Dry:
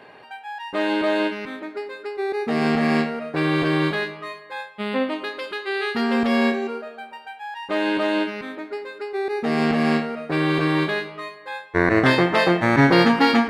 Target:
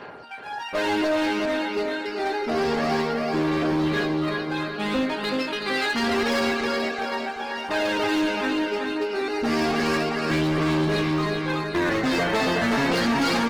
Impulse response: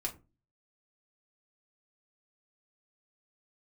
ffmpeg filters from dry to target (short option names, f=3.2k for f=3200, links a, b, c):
-filter_complex "[0:a]aphaser=in_gain=1:out_gain=1:delay=4.6:decay=0.6:speed=0.28:type=sinusoidal,equalizer=f=5.6k:w=2.1:g=8.5,acompressor=threshold=-16dB:ratio=12,asettb=1/sr,asplit=3[a][b][c];[a]atrim=end=2.364[d];[b]atrim=start=2.36:end=4.44,asetpts=PTS-STARTPTS,afade=t=in:d=0.004:c=qsin,afade=t=out:st=2.076:d=0.004:c=qsin,equalizer=f=125:t=o:w=1:g=-6,equalizer=f=2k:t=o:w=1:g=-5,equalizer=f=8k:t=o:w=1:g=-10[e];[c]atrim=start=4.436[f];[d][e]acrossfade=d=0.004:c1=hsin:c2=qsin[g];[g][f]acrossfade=d=0.004:c1=qsin:c2=hsin,aecho=1:1:377|754|1131|1508|1885|2262|2639:0.562|0.309|0.17|0.0936|0.0515|0.0283|0.0156,aeval=exprs='val(0)+0.00562*sin(2*PI*1400*n/s)':c=same,asoftclip=type=hard:threshold=-19.5dB" -ar 48000 -c:a libopus -b:a 16k